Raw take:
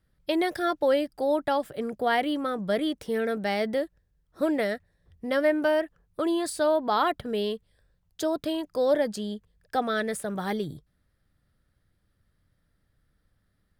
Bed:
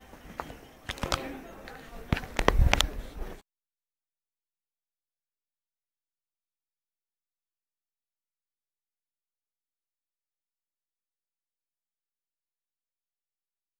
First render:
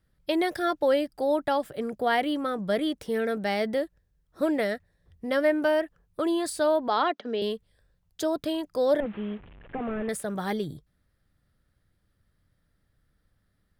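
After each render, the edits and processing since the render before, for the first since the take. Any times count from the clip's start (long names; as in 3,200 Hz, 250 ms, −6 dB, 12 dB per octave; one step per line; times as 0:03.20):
0:06.88–0:07.42: Chebyshev band-pass filter 230–6,300 Hz, order 4
0:09.00–0:10.09: linear delta modulator 16 kbit/s, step −43 dBFS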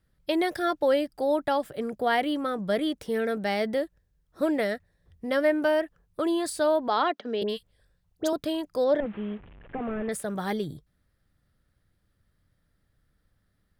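0:07.43–0:08.33: all-pass dispersion highs, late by 61 ms, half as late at 1,600 Hz
0:08.84–0:10.12: high-frequency loss of the air 110 metres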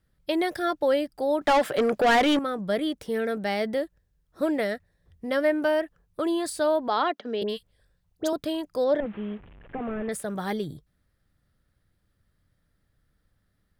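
0:01.41–0:02.39: mid-hump overdrive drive 25 dB, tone 3,300 Hz, clips at −13 dBFS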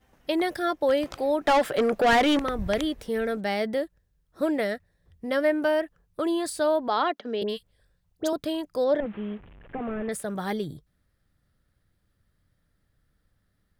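mix in bed −12.5 dB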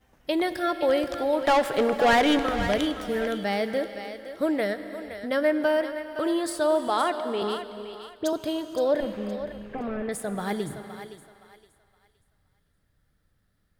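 feedback echo with a high-pass in the loop 517 ms, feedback 30%, high-pass 530 Hz, level −9.5 dB
reverb whose tail is shaped and stops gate 490 ms flat, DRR 10.5 dB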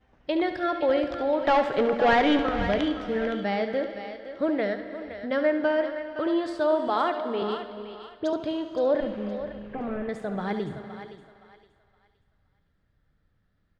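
high-frequency loss of the air 180 metres
on a send: single-tap delay 71 ms −10.5 dB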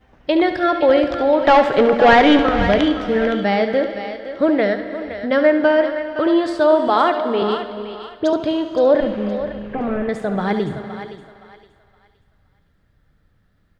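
level +9.5 dB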